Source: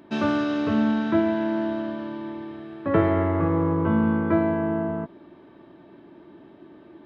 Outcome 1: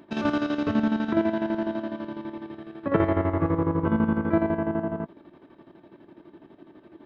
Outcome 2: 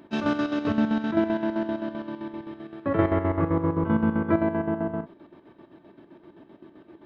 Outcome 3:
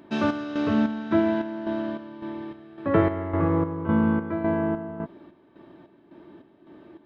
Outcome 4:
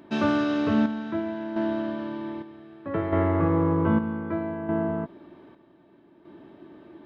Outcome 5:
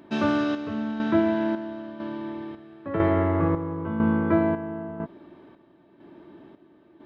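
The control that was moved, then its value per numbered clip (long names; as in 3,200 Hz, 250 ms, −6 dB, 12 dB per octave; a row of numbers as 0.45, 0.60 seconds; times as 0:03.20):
square-wave tremolo, speed: 12, 7.7, 1.8, 0.64, 1 Hertz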